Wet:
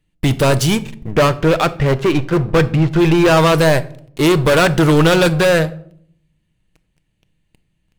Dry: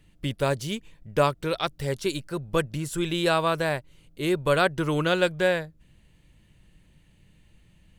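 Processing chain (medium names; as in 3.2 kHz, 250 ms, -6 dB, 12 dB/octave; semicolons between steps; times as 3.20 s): 1.11–3.37 s: low-pass 2.8 kHz 24 dB/octave; waveshaping leveller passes 5; simulated room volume 1000 m³, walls furnished, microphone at 0.55 m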